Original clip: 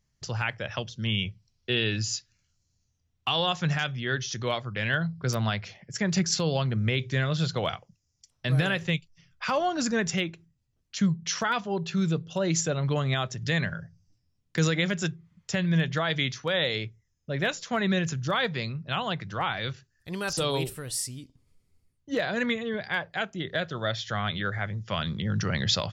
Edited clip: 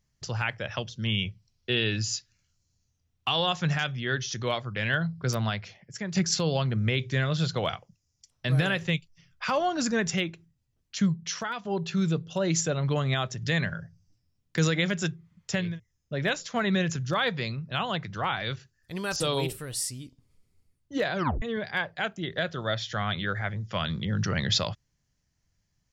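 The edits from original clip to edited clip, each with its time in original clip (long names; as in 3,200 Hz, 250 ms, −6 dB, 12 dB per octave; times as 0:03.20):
0:05.29–0:06.15: fade out, to −8.5 dB
0:11.02–0:11.65: fade out, to −9.5 dB
0:15.68–0:16.85: remove, crossfade 0.24 s
0:22.32: tape stop 0.27 s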